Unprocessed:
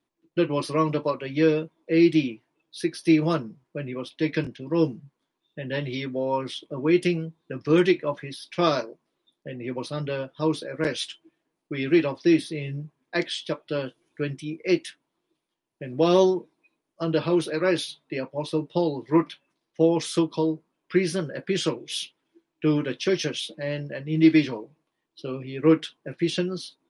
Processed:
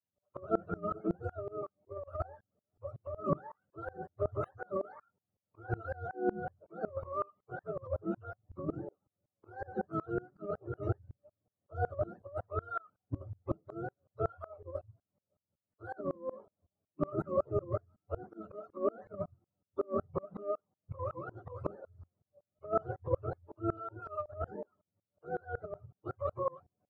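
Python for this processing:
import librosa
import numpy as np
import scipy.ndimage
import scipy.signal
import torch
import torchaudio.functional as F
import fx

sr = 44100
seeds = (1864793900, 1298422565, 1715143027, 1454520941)

y = fx.octave_mirror(x, sr, pivot_hz=440.0)
y = fx.over_compress(y, sr, threshold_db=-24.0, ratio=-0.5)
y = fx.tremolo_decay(y, sr, direction='swelling', hz=5.4, depth_db=28)
y = F.gain(torch.from_numpy(y), -1.0).numpy()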